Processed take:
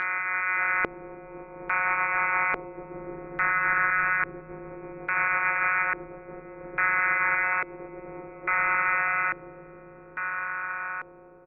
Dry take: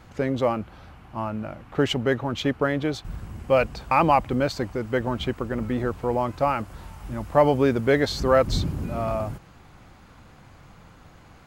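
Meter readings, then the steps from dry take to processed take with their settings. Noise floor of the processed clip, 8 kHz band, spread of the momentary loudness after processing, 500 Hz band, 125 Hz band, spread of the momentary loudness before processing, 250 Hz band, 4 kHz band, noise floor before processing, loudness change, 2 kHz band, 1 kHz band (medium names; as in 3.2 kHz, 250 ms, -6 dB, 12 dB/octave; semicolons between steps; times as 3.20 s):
-48 dBFS, under -35 dB, 19 LU, -16.0 dB, -19.5 dB, 14 LU, -16.0 dB, under -25 dB, -51 dBFS, -1.0 dB, +10.5 dB, -1.5 dB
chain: spectral blur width 1460 ms; high-pass 74 Hz 24 dB/octave; peaking EQ 1.3 kHz +13 dB 1.4 oct; in parallel at +3 dB: compression, threshold -39 dBFS, peak gain reduction 18.5 dB; on the sum: peak limiter -16 dBFS, peak gain reduction 8.5 dB; level rider gain up to 3.5 dB; overload inside the chain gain 22.5 dB; robot voice 188 Hz; frequency inversion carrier 2.6 kHz; doubling 22 ms -7 dB; echo that smears into a reverb 589 ms, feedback 68%, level -11 dB; LFO low-pass square 0.59 Hz 410–1600 Hz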